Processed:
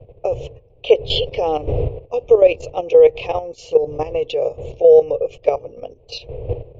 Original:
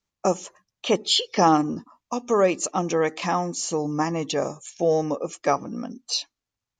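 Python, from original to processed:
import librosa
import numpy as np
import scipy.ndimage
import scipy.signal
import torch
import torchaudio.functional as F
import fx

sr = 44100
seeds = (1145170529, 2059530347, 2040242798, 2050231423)

y = fx.dmg_wind(x, sr, seeds[0], corner_hz=200.0, level_db=-30.0)
y = fx.curve_eq(y, sr, hz=(130.0, 200.0, 330.0, 470.0, 1600.0, 2600.0, 10000.0), db=(0, -23, -8, 14, -22, 7, -30))
y = fx.level_steps(y, sr, step_db=11)
y = y * 10.0 ** (4.0 / 20.0)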